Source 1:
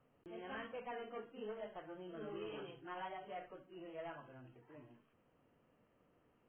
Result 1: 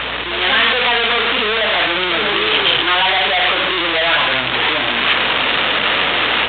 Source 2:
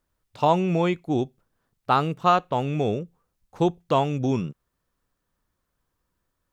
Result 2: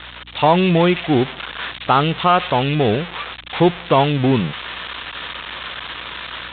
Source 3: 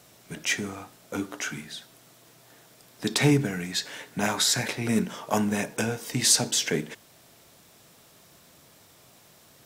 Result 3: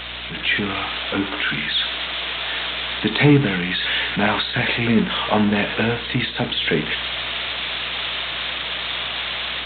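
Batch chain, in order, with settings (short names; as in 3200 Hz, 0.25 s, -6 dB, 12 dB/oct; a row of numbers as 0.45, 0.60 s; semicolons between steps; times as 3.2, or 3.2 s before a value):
switching spikes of -11.5 dBFS; AGC; hum 60 Hz, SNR 33 dB; limiter -5.5 dBFS; A-law 64 kbps 8000 Hz; normalise peaks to -3 dBFS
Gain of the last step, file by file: +13.0, +2.0, +2.5 dB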